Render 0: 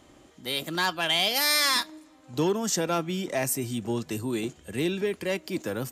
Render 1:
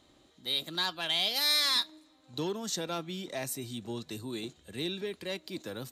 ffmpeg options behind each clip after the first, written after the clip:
ffmpeg -i in.wav -af "equalizer=frequency=3900:width=4.3:gain=14,volume=-9dB" out.wav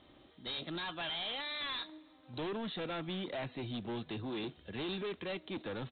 ffmpeg -i in.wav -af "alimiter=level_in=0.5dB:limit=-24dB:level=0:latency=1:release=43,volume=-0.5dB,aresample=8000,asoftclip=type=hard:threshold=-38.5dB,aresample=44100,volume=2.5dB" out.wav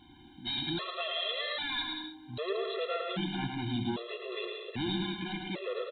ffmpeg -i in.wav -af "aecho=1:1:110|187|240.9|278.6|305:0.631|0.398|0.251|0.158|0.1,afftfilt=real='re*gt(sin(2*PI*0.63*pts/sr)*(1-2*mod(floor(b*sr/1024/350),2)),0)':imag='im*gt(sin(2*PI*0.63*pts/sr)*(1-2*mod(floor(b*sr/1024/350),2)),0)':win_size=1024:overlap=0.75,volume=6.5dB" out.wav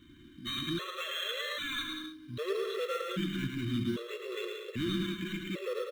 ffmpeg -i in.wav -filter_complex "[0:a]asplit=2[link_01][link_02];[link_02]acrusher=samples=9:mix=1:aa=0.000001,volume=-8dB[link_03];[link_01][link_03]amix=inputs=2:normalize=0,asuperstop=centerf=800:order=8:qfactor=1.5,volume=-2dB" out.wav

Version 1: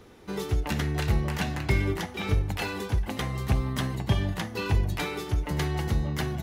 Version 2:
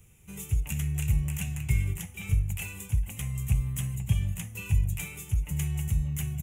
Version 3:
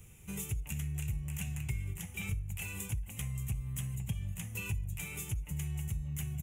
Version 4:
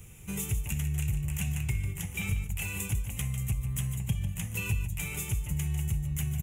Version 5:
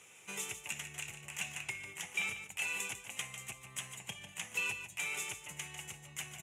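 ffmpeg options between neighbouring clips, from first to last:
ffmpeg -i in.wav -af "firequalizer=gain_entry='entry(150,0);entry(260,-20);entry(1700,-17);entry(2500,-1);entry(4400,-23);entry(7000,7)':delay=0.05:min_phase=1" out.wav
ffmpeg -i in.wav -af "acompressor=threshold=-38dB:ratio=4,volume=2.5dB" out.wav
ffmpeg -i in.wav -af "aecho=1:1:148:0.316,volume=5.5dB" out.wav
ffmpeg -i in.wav -af "highpass=610,lowpass=6900,volume=2dB" out.wav

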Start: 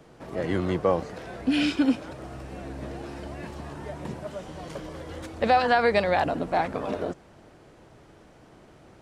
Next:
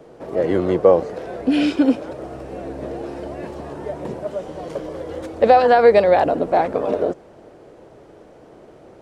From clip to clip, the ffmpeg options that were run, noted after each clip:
ffmpeg -i in.wav -af "equalizer=frequency=480:width_type=o:width=1.6:gain=12" out.wav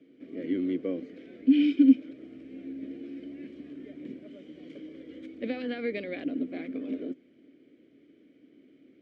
ffmpeg -i in.wav -filter_complex "[0:a]asplit=3[link_01][link_02][link_03];[link_01]bandpass=frequency=270:width_type=q:width=8,volume=0dB[link_04];[link_02]bandpass=frequency=2290:width_type=q:width=8,volume=-6dB[link_05];[link_03]bandpass=frequency=3010:width_type=q:width=8,volume=-9dB[link_06];[link_04][link_05][link_06]amix=inputs=3:normalize=0" out.wav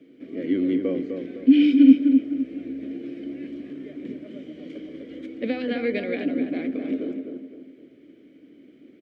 ffmpeg -i in.wav -filter_complex "[0:a]asplit=2[link_01][link_02];[link_02]adelay=255,lowpass=frequency=2000:poles=1,volume=-5.5dB,asplit=2[link_03][link_04];[link_04]adelay=255,lowpass=frequency=2000:poles=1,volume=0.39,asplit=2[link_05][link_06];[link_06]adelay=255,lowpass=frequency=2000:poles=1,volume=0.39,asplit=2[link_07][link_08];[link_08]adelay=255,lowpass=frequency=2000:poles=1,volume=0.39,asplit=2[link_09][link_10];[link_10]adelay=255,lowpass=frequency=2000:poles=1,volume=0.39[link_11];[link_01][link_03][link_05][link_07][link_09][link_11]amix=inputs=6:normalize=0,volume=6dB" out.wav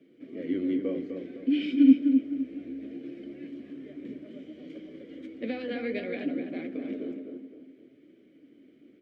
ffmpeg -i in.wav -af "flanger=delay=5.1:depth=9.4:regen=-46:speed=0.61:shape=sinusoidal,volume=-2dB" out.wav

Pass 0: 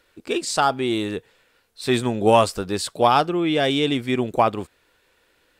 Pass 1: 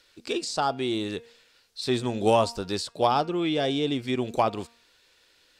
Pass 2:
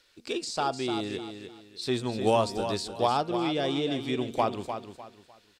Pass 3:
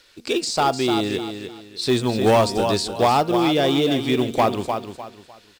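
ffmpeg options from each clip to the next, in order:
ffmpeg -i in.wav -filter_complex "[0:a]equalizer=frequency=4900:width=0.75:gain=13.5,bandreject=frequency=233.7:width_type=h:width=4,bandreject=frequency=467.4:width_type=h:width=4,bandreject=frequency=701.1:width_type=h:width=4,bandreject=frequency=934.8:width_type=h:width=4,bandreject=frequency=1168.5:width_type=h:width=4,bandreject=frequency=1402.2:width_type=h:width=4,bandreject=frequency=1635.9:width_type=h:width=4,bandreject=frequency=1869.6:width_type=h:width=4,bandreject=frequency=2103.3:width_type=h:width=4,bandreject=frequency=2337:width_type=h:width=4,bandreject=frequency=2570.7:width_type=h:width=4,bandreject=frequency=2804.4:width_type=h:width=4,acrossover=split=1100[link_01][link_02];[link_02]acompressor=threshold=-28dB:ratio=5[link_03];[link_01][link_03]amix=inputs=2:normalize=0,volume=-5dB" out.wav
ffmpeg -i in.wav -af "aecho=1:1:301|602|903:0.376|0.109|0.0316,volume=-3dB" out.wav
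ffmpeg -i in.wav -filter_complex "[0:a]asplit=2[link_01][link_02];[link_02]aeval=exprs='0.0794*(abs(mod(val(0)/0.0794+3,4)-2)-1)':channel_layout=same,volume=-4dB[link_03];[link_01][link_03]amix=inputs=2:normalize=0,acrusher=bits=7:mode=log:mix=0:aa=0.000001,volume=5.5dB" out.wav

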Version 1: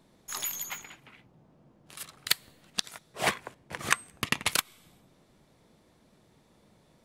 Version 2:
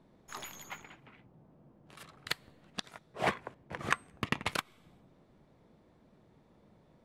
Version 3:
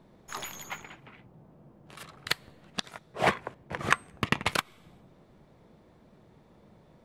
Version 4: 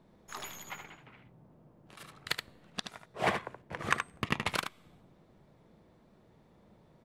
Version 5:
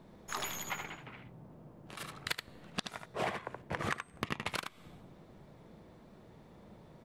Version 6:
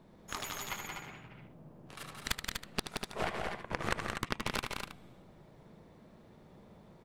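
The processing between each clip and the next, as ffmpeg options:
ffmpeg -i in.wav -af "lowpass=frequency=1300:poles=1" out.wav
ffmpeg -i in.wav -af "equalizer=frequency=270:width_type=o:width=0.31:gain=-3,volume=6dB" out.wav
ffmpeg -i in.wav -af "aecho=1:1:75:0.447,volume=-5dB" out.wav
ffmpeg -i in.wav -af "acompressor=threshold=-38dB:ratio=12,volume=6dB" out.wav
ffmpeg -i in.wav -af "aeval=exprs='0.2*(cos(1*acos(clip(val(0)/0.2,-1,1)))-cos(1*PI/2))+0.0708*(cos(4*acos(clip(val(0)/0.2,-1,1)))-cos(4*PI/2))+0.00794*(cos(7*acos(clip(val(0)/0.2,-1,1)))-cos(7*PI/2))':channel_layout=same,aecho=1:1:174.9|244.9:0.562|0.447" out.wav

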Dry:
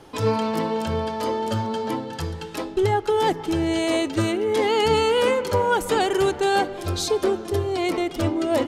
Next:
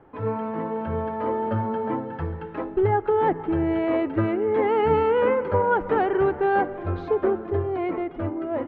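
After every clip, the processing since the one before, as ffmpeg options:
ffmpeg -i in.wav -af "lowpass=frequency=1900:width=0.5412,lowpass=frequency=1900:width=1.3066,dynaudnorm=framelen=140:gausssize=13:maxgain=5.5dB,volume=-5.5dB" out.wav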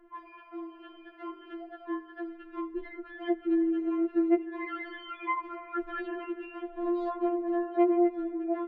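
ffmpeg -i in.wav -af "afftfilt=real='re*4*eq(mod(b,16),0)':imag='im*4*eq(mod(b,16),0)':win_size=2048:overlap=0.75,volume=-3.5dB" out.wav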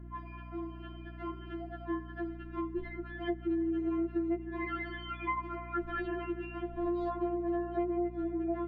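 ffmpeg -i in.wav -af "acompressor=threshold=-29dB:ratio=12,aeval=exprs='val(0)+0.00562*(sin(2*PI*60*n/s)+sin(2*PI*2*60*n/s)/2+sin(2*PI*3*60*n/s)/3+sin(2*PI*4*60*n/s)/4+sin(2*PI*5*60*n/s)/5)':channel_layout=same" out.wav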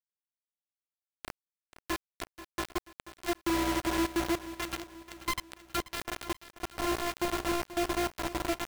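ffmpeg -i in.wav -af "acrusher=bits=4:mix=0:aa=0.000001,aecho=1:1:484|968|1452|1936:0.188|0.0848|0.0381|0.0172" out.wav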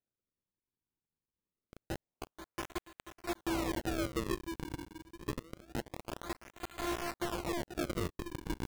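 ffmpeg -i in.wav -af "acrusher=samples=39:mix=1:aa=0.000001:lfo=1:lforange=62.4:lforate=0.26,asoftclip=type=tanh:threshold=-25.5dB,volume=-2dB" out.wav

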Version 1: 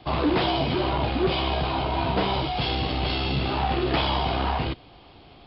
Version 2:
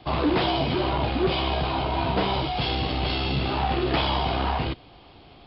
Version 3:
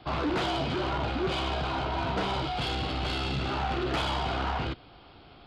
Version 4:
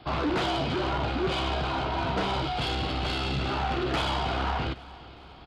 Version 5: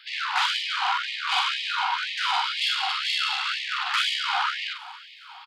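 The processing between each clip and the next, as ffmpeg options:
ffmpeg -i in.wav -af anull out.wav
ffmpeg -i in.wav -af "equalizer=frequency=1400:width_type=o:width=0.28:gain=9,asoftclip=type=tanh:threshold=-21dB,volume=-3dB" out.wav
ffmpeg -i in.wav -af "aecho=1:1:410|820|1230|1640:0.1|0.056|0.0314|0.0176,volume=1.5dB" out.wav
ffmpeg -i in.wav -filter_complex "[0:a]asplit=2[link_01][link_02];[link_02]adelay=44,volume=-6.5dB[link_03];[link_01][link_03]amix=inputs=2:normalize=0,afftfilt=real='re*gte(b*sr/1024,720*pow(1800/720,0.5+0.5*sin(2*PI*2*pts/sr)))':imag='im*gte(b*sr/1024,720*pow(1800/720,0.5+0.5*sin(2*PI*2*pts/sr)))':win_size=1024:overlap=0.75,volume=7.5dB" out.wav

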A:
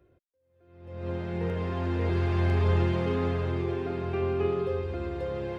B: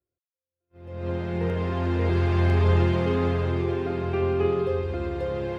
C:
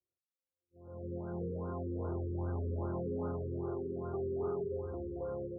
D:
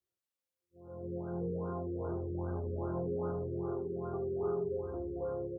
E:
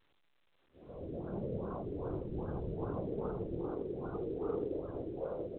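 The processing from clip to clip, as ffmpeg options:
ffmpeg -i in.wav -af "agate=range=-30dB:threshold=-53dB:ratio=16:detection=peak,volume=4dB" out.wav
ffmpeg -i in.wav -af "asoftclip=type=tanh:threshold=-21dB,lowshelf=frequency=88:gain=-8,afftfilt=real='re*lt(b*sr/1024,500*pow(1600/500,0.5+0.5*sin(2*PI*2.5*pts/sr)))':imag='im*lt(b*sr/1024,500*pow(1600/500,0.5+0.5*sin(2*PI*2.5*pts/sr)))':win_size=1024:overlap=0.75,volume=-8.5dB" out.wav
ffmpeg -i in.wav -af "aecho=1:1:17|79:0.447|0.237" out.wav
ffmpeg -i in.wav -af "afftfilt=real='hypot(re,im)*cos(2*PI*random(0))':imag='hypot(re,im)*sin(2*PI*random(1))':win_size=512:overlap=0.75,volume=4dB" -ar 8000 -c:a pcm_alaw out.wav

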